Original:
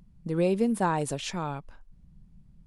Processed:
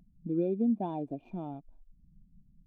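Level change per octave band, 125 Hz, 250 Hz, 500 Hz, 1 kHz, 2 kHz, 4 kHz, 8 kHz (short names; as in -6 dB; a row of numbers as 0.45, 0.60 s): -8.0 dB, -2.0 dB, -7.0 dB, -10.5 dB, under -25 dB, under -25 dB, under -40 dB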